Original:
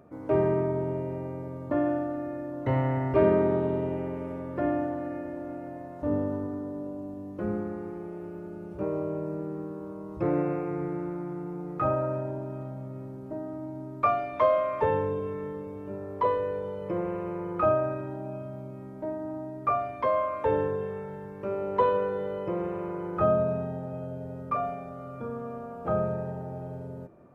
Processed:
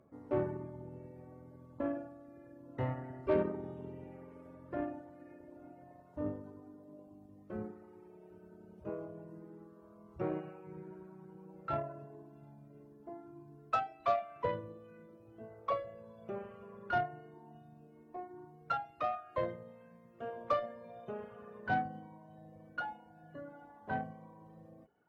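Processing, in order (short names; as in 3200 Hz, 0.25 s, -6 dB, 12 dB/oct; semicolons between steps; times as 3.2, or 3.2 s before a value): speed glide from 94% -> 124%; reverb removal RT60 1.6 s; added harmonics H 7 -28 dB, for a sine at -10.5 dBFS; gain -7.5 dB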